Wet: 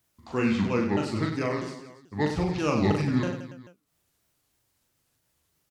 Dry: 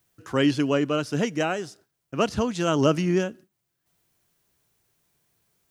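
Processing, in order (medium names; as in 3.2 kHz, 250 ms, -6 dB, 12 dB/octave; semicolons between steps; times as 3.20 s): sawtooth pitch modulation -8 st, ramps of 323 ms; reverse bouncing-ball echo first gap 40 ms, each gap 1.4×, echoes 5; trim -3 dB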